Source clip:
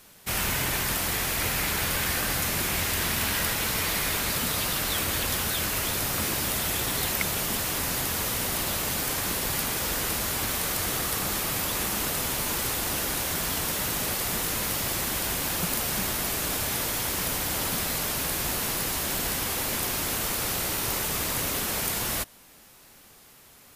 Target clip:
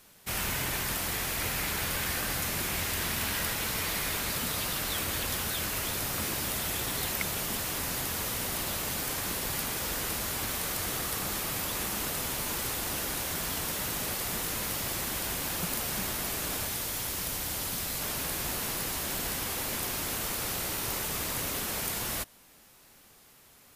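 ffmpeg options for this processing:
-filter_complex "[0:a]asettb=1/sr,asplit=3[a][b][c];[a]atrim=end=16.654[d];[b]atrim=start=16.65:end=18.01,asetpts=PTS-STARTPTS,afade=t=in:d=0.004:c=qsin,afade=t=out:st=1.356:d=0.004:c=qsin,acrossover=split=130|3000[e][f][g];[f]acompressor=threshold=-34dB:ratio=6[h];[e][h][g]amix=inputs=3:normalize=0[i];[c]atrim=start=18.006[j];[d][i]acrossfade=d=0.004:c1=hsin:c2=qsin[k];[k][j]acrossfade=d=0.004:c1=qsin:c2=hsin,volume=-4.5dB"

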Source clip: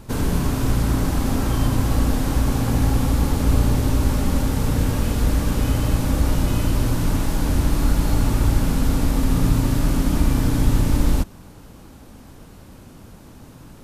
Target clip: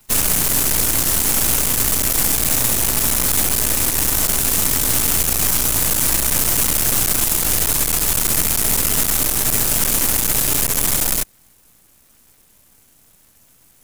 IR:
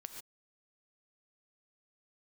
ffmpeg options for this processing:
-af "asoftclip=type=hard:threshold=-17dB,aexciter=amount=9.2:drive=7.6:freq=5.4k,aeval=exprs='0.75*(cos(1*acos(clip(val(0)/0.75,-1,1)))-cos(1*PI/2))+0.0841*(cos(6*acos(clip(val(0)/0.75,-1,1)))-cos(6*PI/2))+0.119*(cos(7*acos(clip(val(0)/0.75,-1,1)))-cos(7*PI/2))':c=same"

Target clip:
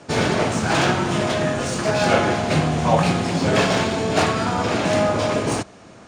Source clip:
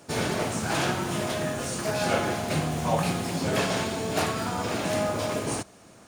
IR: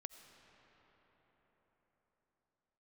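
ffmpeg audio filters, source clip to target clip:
-filter_complex "[0:a]lowpass=f=9.4k:w=0.5412,lowpass=f=9.4k:w=1.3066,acrossover=split=460|3200[a][b][c];[c]adynamicsmooth=sensitivity=6.5:basefreq=6.7k[d];[a][b][d]amix=inputs=3:normalize=0,volume=8dB"

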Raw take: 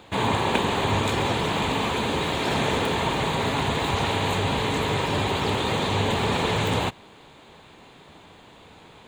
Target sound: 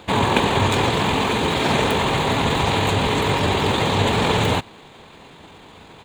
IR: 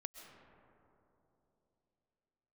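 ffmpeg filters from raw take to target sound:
-af "atempo=1.5,volume=5.5dB"

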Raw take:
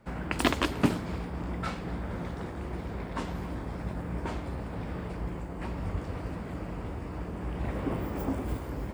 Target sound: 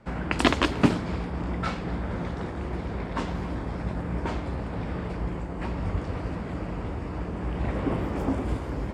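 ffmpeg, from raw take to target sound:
-af "lowpass=7.2k,volume=4.5dB"

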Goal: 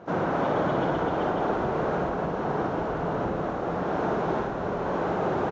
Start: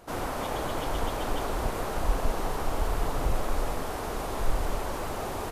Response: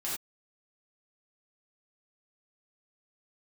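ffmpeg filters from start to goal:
-filter_complex "[0:a]tiltshelf=f=1.3k:g=8,acompressor=threshold=-24dB:ratio=2,highpass=160,equalizer=f=170:t=q:w=4:g=7,equalizer=f=250:t=q:w=4:g=-3,equalizer=f=1.5k:t=q:w=4:g=6,equalizer=f=4.8k:t=q:w=4:g=-6,lowpass=f=5.7k:w=0.5412,lowpass=f=5.7k:w=1.3066,aecho=1:1:58.31|256.6:0.562|0.316,asplit=2[a][b];[1:a]atrim=start_sample=2205,adelay=127[c];[b][c]afir=irnorm=-1:irlink=0,volume=-13dB[d];[a][d]amix=inputs=2:normalize=0,volume=2.5dB" -ar 16000 -c:a aac -b:a 64k

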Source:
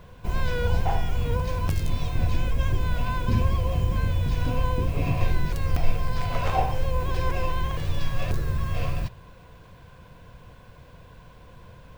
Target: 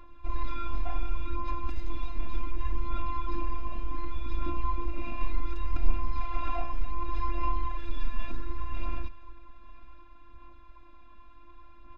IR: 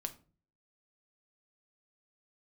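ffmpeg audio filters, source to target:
-filter_complex "[0:a]asplit=2[a][b];[b]asoftclip=type=tanh:threshold=-23.5dB,volume=-3.5dB[c];[a][c]amix=inputs=2:normalize=0,aecho=1:1:925:0.0944,afftfilt=real='hypot(re,im)*cos(PI*b)':imag='0':win_size=512:overlap=0.75,aecho=1:1:3.7:0.79,aphaser=in_gain=1:out_gain=1:delay=4.7:decay=0.35:speed=0.67:type=sinusoidal,lowpass=3k,volume=-8.5dB"

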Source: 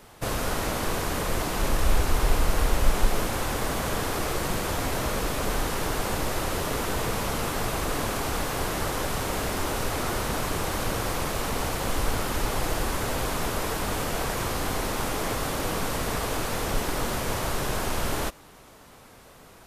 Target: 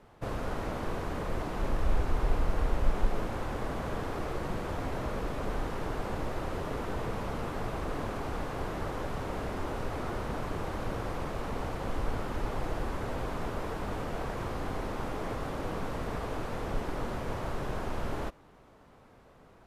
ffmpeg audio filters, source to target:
-af "lowpass=f=1.2k:p=1,volume=-5dB"

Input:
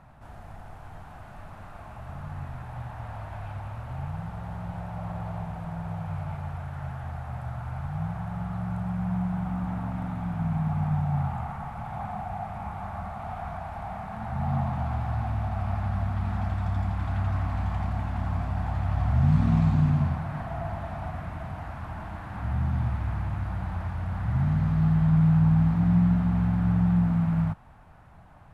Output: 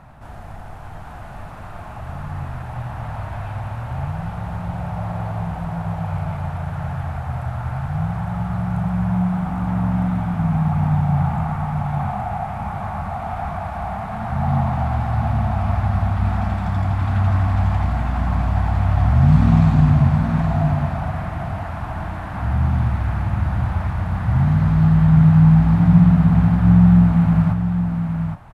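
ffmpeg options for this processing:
-af "aecho=1:1:818:0.501,volume=8dB"

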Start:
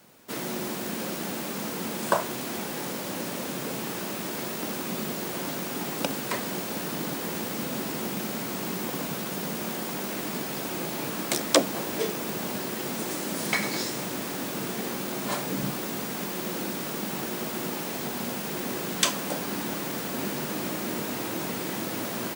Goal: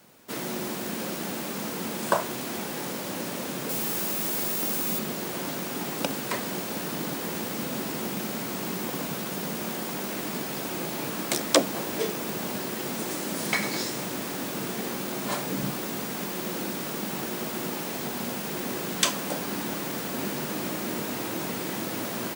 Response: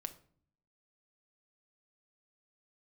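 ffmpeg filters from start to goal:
-filter_complex "[0:a]asettb=1/sr,asplit=3[a][b][c];[a]atrim=end=3.694[d];[b]atrim=start=3.69:end=4.99,asetpts=PTS-STARTPTS,afade=t=in:d=0.004:c=qsin,afade=t=out:st=1.296:d=0.004:c=qsin,highshelf=f=6.4k:g=10[e];[c]atrim=start=4.986[f];[d][e]acrossfade=d=0.004:c1=hsin:c2=qsin[g];[g][f]acrossfade=d=0.004:c1=qsin:c2=hsin"

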